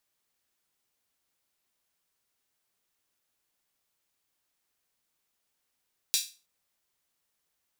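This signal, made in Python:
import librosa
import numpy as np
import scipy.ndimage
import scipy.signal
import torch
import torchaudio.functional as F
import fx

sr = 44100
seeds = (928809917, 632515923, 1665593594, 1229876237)

y = fx.drum_hat_open(sr, length_s=0.32, from_hz=3900.0, decay_s=0.32)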